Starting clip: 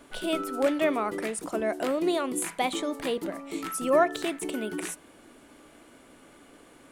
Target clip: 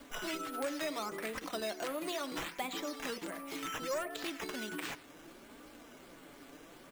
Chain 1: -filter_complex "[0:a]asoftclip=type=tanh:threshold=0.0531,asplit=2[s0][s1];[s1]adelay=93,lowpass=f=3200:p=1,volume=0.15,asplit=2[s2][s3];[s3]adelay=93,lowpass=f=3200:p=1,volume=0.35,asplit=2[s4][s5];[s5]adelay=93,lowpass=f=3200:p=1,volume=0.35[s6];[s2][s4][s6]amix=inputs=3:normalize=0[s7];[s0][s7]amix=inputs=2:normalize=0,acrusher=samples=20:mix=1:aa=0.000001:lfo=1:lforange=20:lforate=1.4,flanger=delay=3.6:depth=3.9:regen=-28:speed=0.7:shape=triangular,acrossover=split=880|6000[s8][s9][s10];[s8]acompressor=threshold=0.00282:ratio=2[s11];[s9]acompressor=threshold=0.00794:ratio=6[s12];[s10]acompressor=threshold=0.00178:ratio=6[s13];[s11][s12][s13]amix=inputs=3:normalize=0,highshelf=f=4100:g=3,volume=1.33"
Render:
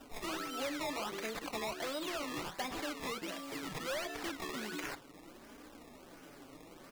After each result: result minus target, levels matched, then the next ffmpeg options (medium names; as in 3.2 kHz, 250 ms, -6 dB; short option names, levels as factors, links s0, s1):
decimation with a swept rate: distortion +8 dB; saturation: distortion +7 dB
-filter_complex "[0:a]asoftclip=type=tanh:threshold=0.0531,asplit=2[s0][s1];[s1]adelay=93,lowpass=f=3200:p=1,volume=0.15,asplit=2[s2][s3];[s3]adelay=93,lowpass=f=3200:p=1,volume=0.35,asplit=2[s4][s5];[s5]adelay=93,lowpass=f=3200:p=1,volume=0.35[s6];[s2][s4][s6]amix=inputs=3:normalize=0[s7];[s0][s7]amix=inputs=2:normalize=0,acrusher=samples=7:mix=1:aa=0.000001:lfo=1:lforange=7:lforate=1.4,flanger=delay=3.6:depth=3.9:regen=-28:speed=0.7:shape=triangular,acrossover=split=880|6000[s8][s9][s10];[s8]acompressor=threshold=0.00282:ratio=2[s11];[s9]acompressor=threshold=0.00794:ratio=6[s12];[s10]acompressor=threshold=0.00178:ratio=6[s13];[s11][s12][s13]amix=inputs=3:normalize=0,highshelf=f=4100:g=3,volume=1.33"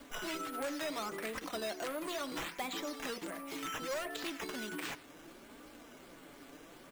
saturation: distortion +7 dB
-filter_complex "[0:a]asoftclip=type=tanh:threshold=0.133,asplit=2[s0][s1];[s1]adelay=93,lowpass=f=3200:p=1,volume=0.15,asplit=2[s2][s3];[s3]adelay=93,lowpass=f=3200:p=1,volume=0.35,asplit=2[s4][s5];[s5]adelay=93,lowpass=f=3200:p=1,volume=0.35[s6];[s2][s4][s6]amix=inputs=3:normalize=0[s7];[s0][s7]amix=inputs=2:normalize=0,acrusher=samples=7:mix=1:aa=0.000001:lfo=1:lforange=7:lforate=1.4,flanger=delay=3.6:depth=3.9:regen=-28:speed=0.7:shape=triangular,acrossover=split=880|6000[s8][s9][s10];[s8]acompressor=threshold=0.00282:ratio=2[s11];[s9]acompressor=threshold=0.00794:ratio=6[s12];[s10]acompressor=threshold=0.00178:ratio=6[s13];[s11][s12][s13]amix=inputs=3:normalize=0,highshelf=f=4100:g=3,volume=1.33"